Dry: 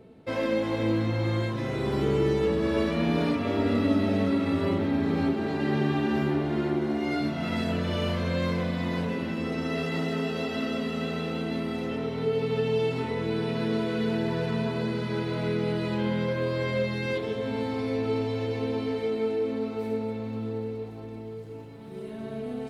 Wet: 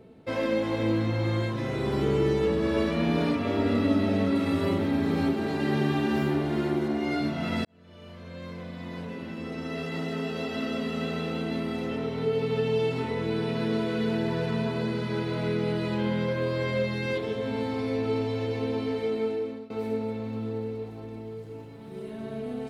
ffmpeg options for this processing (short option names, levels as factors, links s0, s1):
-filter_complex "[0:a]asettb=1/sr,asplit=3[s0][s1][s2];[s0]atrim=end=4.354[s3];[s1]atrim=start=4.35:end=6.88,asetpts=PTS-STARTPTS,afade=t=in:d=0.004:c=qsin,afade=t=out:st=2.526:d=0.004:c=qsin,highshelf=f=6600:g=9.5[s4];[s2]atrim=start=6.876[s5];[s3][s4]acrossfade=d=0.004:c1=hsin:c2=qsin[s6];[s6][s5]acrossfade=d=0.004:c1=qsin:c2=hsin,asplit=3[s7][s8][s9];[s7]atrim=end=7.65,asetpts=PTS-STARTPTS,afade=t=out:st=7.646:d=0.004:c=hsin[s10];[s8]atrim=start=7.65:end=19.7,asetpts=PTS-STARTPTS,afade=t=in:d=3.36,afade=t=out:st=11.44:d=0.61:c=qsin:silence=0.0944061[s11];[s9]atrim=start=19.7,asetpts=PTS-STARTPTS,afade=t=in:d=0.004:c=hsin:silence=0.0944061[s12];[s10][s11][s12]concat=n=3:v=0:a=1"